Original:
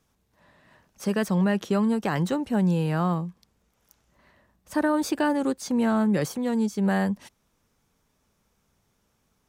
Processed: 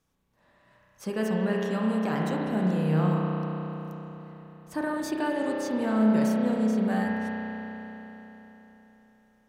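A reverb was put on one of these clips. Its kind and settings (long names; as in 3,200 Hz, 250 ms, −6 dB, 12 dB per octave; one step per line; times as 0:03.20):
spring reverb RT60 3.9 s, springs 32 ms, chirp 45 ms, DRR −3 dB
level −6.5 dB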